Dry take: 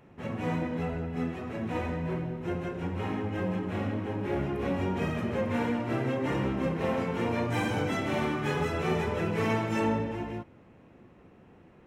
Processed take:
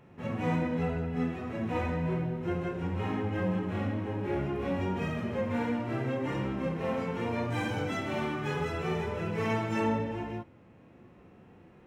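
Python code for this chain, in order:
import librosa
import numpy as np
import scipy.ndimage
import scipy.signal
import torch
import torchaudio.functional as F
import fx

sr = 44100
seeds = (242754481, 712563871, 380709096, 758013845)

y = scipy.ndimage.median_filter(x, 3, mode='constant')
y = fx.hpss(y, sr, part='percussive', gain_db=-11)
y = fx.rider(y, sr, range_db=4, speed_s=2.0)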